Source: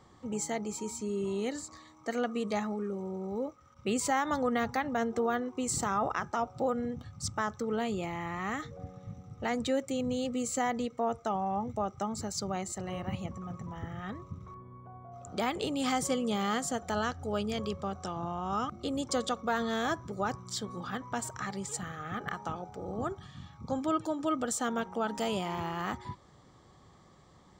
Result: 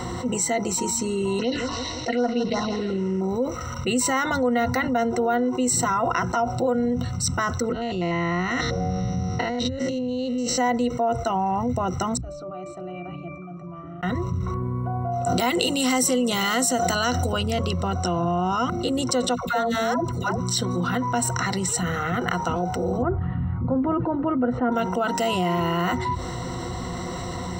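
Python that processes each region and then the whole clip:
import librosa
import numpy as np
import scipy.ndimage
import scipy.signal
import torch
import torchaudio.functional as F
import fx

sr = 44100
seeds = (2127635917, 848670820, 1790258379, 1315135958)

y = fx.chain(x, sr, fx.cvsd(bps=32000),
    fx.env_phaser(low_hz=160.0, high_hz=2700.0, full_db=-27.5),
    fx.echo_feedback(ms=164, feedback_pct=29, wet_db=-13.5), at=(1.39, 3.21))
y = fx.chain(y, sr, fx.spec_steps(hold_ms=100),
    fx.over_compress(threshold_db=-40.0, ratio=-0.5),
    fx.high_shelf_res(hz=7200.0, db=-12.0, q=3.0), at=(7.72, 10.58))
y = fx.chain(y, sr, fx.highpass(hz=350.0, slope=12),
    fx.level_steps(step_db=11),
    fx.octave_resonator(note='D', decay_s=0.64), at=(12.17, 14.03))
y = fx.chain(y, sr, fx.highpass(hz=120.0, slope=12),
    fx.high_shelf(hz=3700.0, db=8.5),
    fx.pre_swell(db_per_s=33.0), at=(15.26, 17.33))
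y = fx.chain(y, sr, fx.level_steps(step_db=16),
    fx.peak_eq(hz=9600.0, db=5.0, octaves=0.27),
    fx.dispersion(late='lows', ms=121.0, hz=690.0), at=(19.35, 20.4))
y = fx.chain(y, sr, fx.lowpass(hz=2000.0, slope=24),
    fx.tilt_eq(slope=-2.0), at=(23.02, 24.72))
y = fx.ripple_eq(y, sr, per_octave=2.0, db=16)
y = fx.env_flatten(y, sr, amount_pct=70)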